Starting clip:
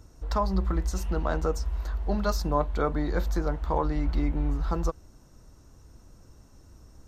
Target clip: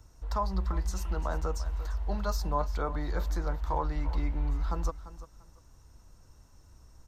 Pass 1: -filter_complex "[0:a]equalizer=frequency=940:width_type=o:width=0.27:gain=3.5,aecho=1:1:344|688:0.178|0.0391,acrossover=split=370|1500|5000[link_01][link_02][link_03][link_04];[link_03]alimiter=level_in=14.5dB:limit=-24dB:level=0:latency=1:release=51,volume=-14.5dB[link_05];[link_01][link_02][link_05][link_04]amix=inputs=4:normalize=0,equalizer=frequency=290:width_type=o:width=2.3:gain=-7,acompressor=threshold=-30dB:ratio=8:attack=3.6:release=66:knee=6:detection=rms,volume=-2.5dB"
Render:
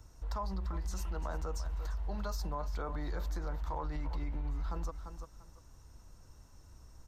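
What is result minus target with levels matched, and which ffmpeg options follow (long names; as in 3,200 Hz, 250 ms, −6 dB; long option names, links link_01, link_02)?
downward compressor: peak gain reduction +10.5 dB
-filter_complex "[0:a]equalizer=frequency=940:width_type=o:width=0.27:gain=3.5,aecho=1:1:344|688:0.178|0.0391,acrossover=split=370|1500|5000[link_01][link_02][link_03][link_04];[link_03]alimiter=level_in=14.5dB:limit=-24dB:level=0:latency=1:release=51,volume=-14.5dB[link_05];[link_01][link_02][link_05][link_04]amix=inputs=4:normalize=0,equalizer=frequency=290:width_type=o:width=2.3:gain=-7,volume=-2.5dB"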